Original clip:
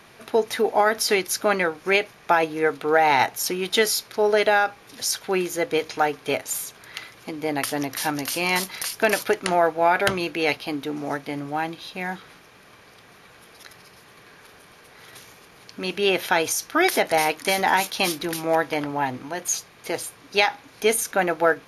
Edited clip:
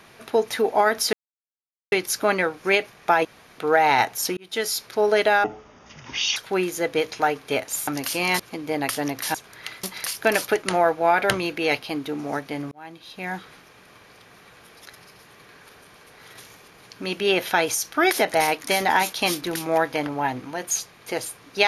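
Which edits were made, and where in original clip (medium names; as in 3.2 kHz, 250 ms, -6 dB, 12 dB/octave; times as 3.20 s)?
1.13 s: insert silence 0.79 s
2.46–2.79 s: room tone
3.58–4.05 s: fade in
4.65–5.14 s: speed 53%
6.65–7.14 s: swap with 8.09–8.61 s
11.49–12.13 s: fade in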